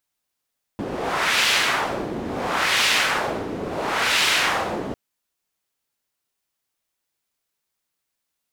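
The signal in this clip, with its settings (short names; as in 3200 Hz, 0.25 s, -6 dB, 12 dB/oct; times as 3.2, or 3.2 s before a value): wind-like swept noise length 4.15 s, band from 320 Hz, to 2900 Hz, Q 1.1, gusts 3, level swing 10.5 dB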